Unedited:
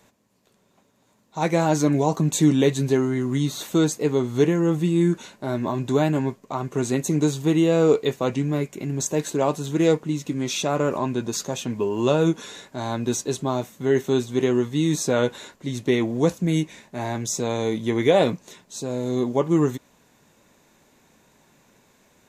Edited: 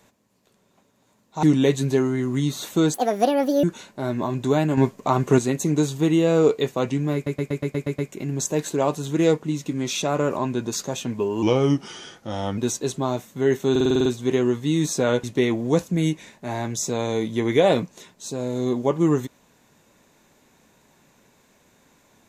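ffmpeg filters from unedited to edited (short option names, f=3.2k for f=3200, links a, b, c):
-filter_complex "[0:a]asplit=23[a][b][c][d][e][f][g][h][i][j][k][l][m][n][o][p][q][r][s][t][u][v][w];[a]atrim=end=1.432[x];[b]atrim=start=2.408:end=3.924[y];[c]atrim=start=3.92:end=5.08,asetpts=PTS-STARTPTS,asetrate=73647,aresample=44100,atrim=end_sample=30632,asetpts=PTS-STARTPTS[z];[d]atrim=start=5.076:end=6.222[aa];[e]atrim=start=6.218:end=6.832,asetpts=PTS-STARTPTS,volume=7.5dB[ab];[f]atrim=start=6.828:end=8.712[ac];[g]atrim=start=8.588:end=8.712[ad];[h]atrim=start=8.588:end=8.712[ae];[i]atrim=start=8.588:end=8.712[af];[j]atrim=start=8.588:end=8.712[ag];[k]atrim=start=8.588:end=8.712[ah];[l]atrim=start=8.588:end=8.712[ai];[m]atrim=start=8.588:end=12.034[aj];[n]atrim=start=12.03:end=13.02,asetpts=PTS-STARTPTS,asetrate=37926,aresample=44100,atrim=end_sample=50766,asetpts=PTS-STARTPTS[ak];[o]atrim=start=13.016:end=14.202[al];[p]atrim=start=14.148:end=14.202[am];[q]atrim=start=14.148:end=14.202[an];[r]atrim=start=14.148:end=14.202[ao];[s]atrim=start=14.148:end=14.202[ap];[t]atrim=start=14.148:end=14.202[aq];[u]atrim=start=14.148:end=14.202[ar];[v]atrim=start=14.148:end=15.332[as];[w]atrim=start=15.738[at];[x][y]acrossfade=d=0.004:c1=hsin:c2=hsin[au];[au][z]acrossfade=d=0.004:c1=hsin:c2=hsin[av];[av][aa]acrossfade=d=0.004:c1=hsin:c2=hsin[aw];[aw][ab]acrossfade=d=0.004:c1=hsin:c2=hsin[ax];[ax][ac]acrossfade=d=0.004:c1=hsin:c2=hsin[ay];[ay][ad]acrossfade=d=0.004:c1=hsin:c2=hsin[az];[az][ae]acrossfade=d=0.004:c1=hsin:c2=hsin[ba];[ba][af]acrossfade=d=0.004:c1=hsin:c2=hsin[bb];[bb][ag]acrossfade=d=0.004:c1=hsin:c2=hsin[bc];[bc][ah]acrossfade=d=0.004:c1=hsin:c2=hsin[bd];[bd][ai]acrossfade=d=0.004:c1=hsin:c2=hsin[be];[be][aj]acrossfade=d=0.004:c1=hsin:c2=hsin[bf];[bf][ak]acrossfade=d=0.004:c1=hsin:c2=hsin[bg];[bg][al]acrossfade=d=0.004:c1=hsin:c2=hsin[bh];[bh][am]acrossfade=d=0.004:c1=hsin:c2=hsin[bi];[bi][an]acrossfade=d=0.004:c1=hsin:c2=hsin[bj];[bj][ao]acrossfade=d=0.004:c1=hsin:c2=hsin[bk];[bk][ap]acrossfade=d=0.004:c1=hsin:c2=hsin[bl];[bl][aq]acrossfade=d=0.004:c1=hsin:c2=hsin[bm];[bm][ar]acrossfade=d=0.004:c1=hsin:c2=hsin[bn];[bn][as]acrossfade=d=0.004:c1=hsin:c2=hsin[bo];[bo][at]acrossfade=d=0.004:c1=hsin:c2=hsin"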